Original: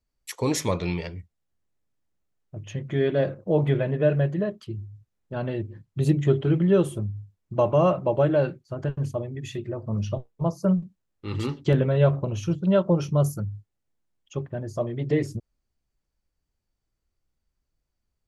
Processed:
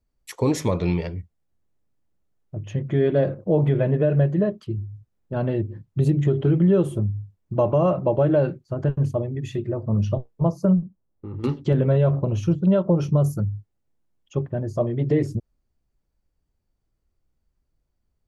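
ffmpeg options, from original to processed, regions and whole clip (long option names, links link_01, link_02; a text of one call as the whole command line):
ffmpeg -i in.wav -filter_complex "[0:a]asettb=1/sr,asplit=3[link_01][link_02][link_03];[link_01]atrim=end=10.814[link_04];[link_02]atrim=start=10.81:end=11.44,asetpts=PTS-STARTPTS,afade=type=in:duration=0.004:curve=qsin,afade=type=out:start_time=0.626:duration=0.004:curve=qsin,lowpass=1100,acompressor=threshold=-37dB:ratio=4:attack=3.2:release=140:knee=1:detection=peak[link_05];[link_03]atrim=start=11.436[link_06];[link_04][link_05]acrossfade=duration=0.004:curve1=hsin:curve2=qsin[link_07];[link_07][link_06]acrossfade=duration=0.004:curve1=qsin:curve2=hsin,tiltshelf=frequency=1200:gain=4.5,alimiter=limit=-12dB:level=0:latency=1:release=111,volume=1.5dB" out.wav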